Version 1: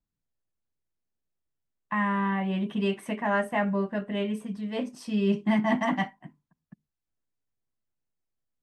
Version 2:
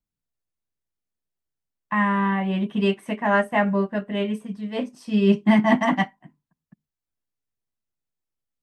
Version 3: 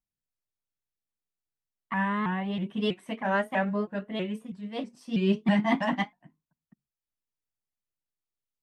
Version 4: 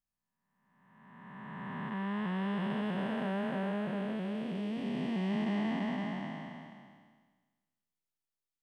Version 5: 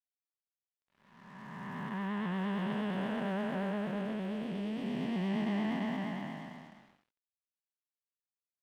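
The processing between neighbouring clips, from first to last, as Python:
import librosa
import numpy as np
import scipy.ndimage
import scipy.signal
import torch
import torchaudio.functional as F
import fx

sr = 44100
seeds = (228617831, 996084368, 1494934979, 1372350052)

y1 = fx.upward_expand(x, sr, threshold_db=-41.0, expansion=1.5)
y1 = y1 * librosa.db_to_amplitude(8.0)
y2 = fx.dynamic_eq(y1, sr, hz=3900.0, q=1.9, threshold_db=-46.0, ratio=4.0, max_db=6)
y2 = fx.vibrato_shape(y2, sr, shape='saw_up', rate_hz=3.1, depth_cents=160.0)
y2 = y2 * librosa.db_to_amplitude(-7.0)
y3 = fx.spec_blur(y2, sr, span_ms=1180.0)
y4 = fx.vibrato(y3, sr, rate_hz=8.6, depth_cents=54.0)
y4 = np.sign(y4) * np.maximum(np.abs(y4) - 10.0 ** (-58.0 / 20.0), 0.0)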